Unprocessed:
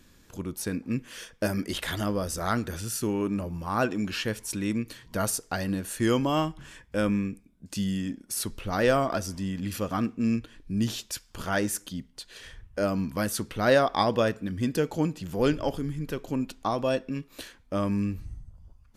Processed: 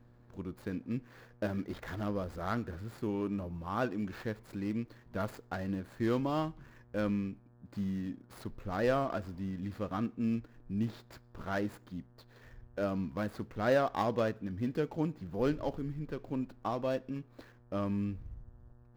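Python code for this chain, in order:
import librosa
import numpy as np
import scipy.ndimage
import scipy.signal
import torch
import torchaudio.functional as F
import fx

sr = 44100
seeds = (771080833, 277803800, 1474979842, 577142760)

y = scipy.ndimage.median_filter(x, 15, mode='constant')
y = fx.dmg_buzz(y, sr, base_hz=120.0, harmonics=15, level_db=-55.0, tilt_db=-8, odd_only=False)
y = fx.peak_eq(y, sr, hz=8800.0, db=-7.5, octaves=1.2)
y = y * 10.0 ** (-6.5 / 20.0)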